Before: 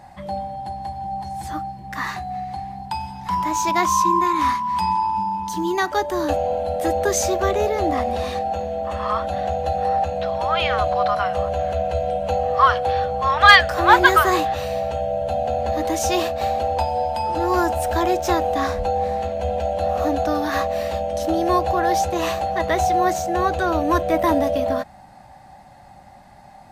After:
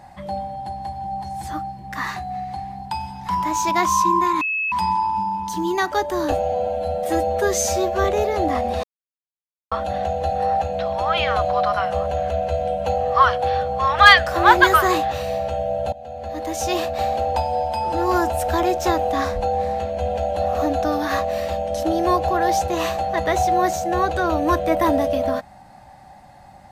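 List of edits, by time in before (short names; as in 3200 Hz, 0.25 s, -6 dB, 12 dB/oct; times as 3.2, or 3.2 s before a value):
4.41–4.72 bleep 2590 Hz -20 dBFS
6.32–7.47 stretch 1.5×
8.26–9.14 mute
15.35–16.38 fade in, from -19 dB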